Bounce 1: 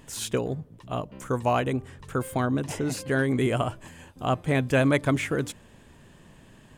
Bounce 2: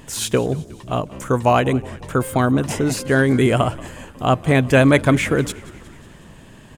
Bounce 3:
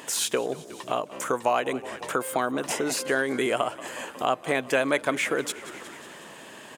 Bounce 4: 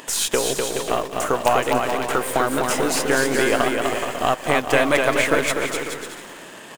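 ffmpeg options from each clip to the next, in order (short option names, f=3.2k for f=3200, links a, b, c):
-filter_complex "[0:a]asplit=6[a][b][c][d][e][f];[b]adelay=182,afreqshift=-44,volume=-20.5dB[g];[c]adelay=364,afreqshift=-88,volume=-24.7dB[h];[d]adelay=546,afreqshift=-132,volume=-28.8dB[i];[e]adelay=728,afreqshift=-176,volume=-33dB[j];[f]adelay=910,afreqshift=-220,volume=-37.1dB[k];[a][g][h][i][j][k]amix=inputs=6:normalize=0,volume=8.5dB"
-af "highpass=430,acompressor=threshold=-35dB:ratio=2,volume=5dB"
-filter_complex "[0:a]asplit=2[a][b];[b]acrusher=bits=3:dc=4:mix=0:aa=0.000001,volume=-4dB[c];[a][c]amix=inputs=2:normalize=0,aecho=1:1:250|425|547.5|633.2|693.3:0.631|0.398|0.251|0.158|0.1,volume=2dB"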